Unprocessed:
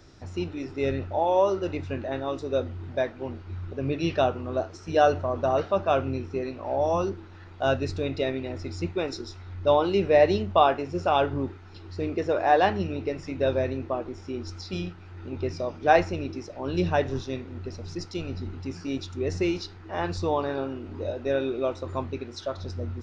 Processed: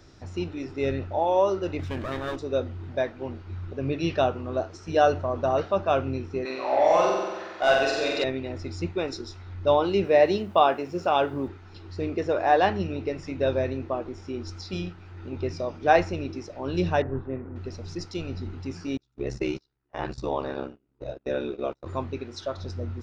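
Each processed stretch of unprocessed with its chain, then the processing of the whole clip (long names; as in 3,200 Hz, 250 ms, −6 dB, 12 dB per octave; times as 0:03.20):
0:01.79–0:02.36: lower of the sound and its delayed copy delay 0.55 ms + envelope flattener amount 50%
0:06.45–0:08.24: high-pass filter 450 Hz 6 dB per octave + mid-hump overdrive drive 13 dB, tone 5,700 Hz, clips at −14 dBFS + flutter between parallel walls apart 7.9 metres, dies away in 1.2 s
0:10.04–0:11.48: high-pass filter 150 Hz + bit-depth reduction 12 bits, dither triangular
0:17.02–0:17.56: low-pass filter 1,700 Hz 24 dB per octave + upward compression, threshold −33 dBFS + one half of a high-frequency compander decoder only
0:18.97–0:21.86: noise gate −32 dBFS, range −32 dB + ring modulation 34 Hz
whole clip: no processing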